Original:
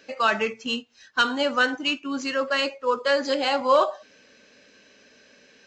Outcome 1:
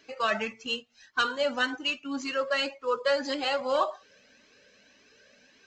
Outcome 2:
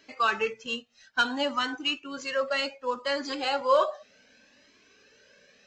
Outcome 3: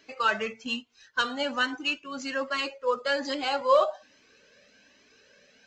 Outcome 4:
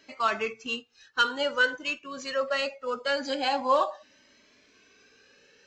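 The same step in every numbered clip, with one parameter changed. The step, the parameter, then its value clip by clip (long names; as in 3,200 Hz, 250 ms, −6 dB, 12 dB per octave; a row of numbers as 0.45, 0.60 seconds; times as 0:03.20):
flanger whose copies keep moving one way, speed: 1.8, 0.64, 1.2, 0.23 Hertz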